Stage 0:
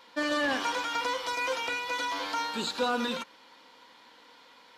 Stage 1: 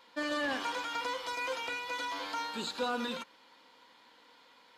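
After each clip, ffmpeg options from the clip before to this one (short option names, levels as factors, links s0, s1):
-af "bandreject=f=5700:w=17,volume=0.562"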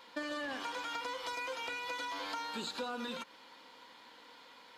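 -af "acompressor=threshold=0.00891:ratio=6,volume=1.58"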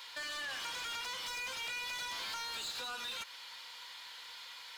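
-filter_complex "[0:a]aderivative,asplit=2[s0][s1];[s1]highpass=f=720:p=1,volume=12.6,asoftclip=type=tanh:threshold=0.0168[s2];[s0][s2]amix=inputs=2:normalize=0,lowpass=f=3600:p=1,volume=0.501,volume=1.58"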